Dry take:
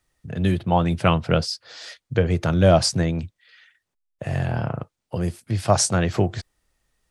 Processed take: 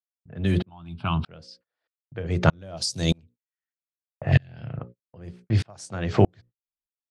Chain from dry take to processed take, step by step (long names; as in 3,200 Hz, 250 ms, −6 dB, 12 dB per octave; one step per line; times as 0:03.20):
0:02.77–0:03.18: high shelf with overshoot 2,800 Hz +14 dB, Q 1.5
low-pass that shuts in the quiet parts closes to 1,300 Hz, open at −13.5 dBFS
mains-hum notches 60/120/180/240/300/360/420/480/540 Hz
noise gate −39 dBFS, range −40 dB
0:04.32–0:04.79: octave-band graphic EQ 125/1,000/2,000/4,000 Hz +6/−11/+5/+11 dB
downward compressor 10 to 1, threshold −17 dBFS, peak gain reduction 15.5 dB
0:00.69–0:01.26: phaser with its sweep stopped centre 1,900 Hz, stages 6
tremolo with a ramp in dB swelling 1.6 Hz, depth 38 dB
level +8 dB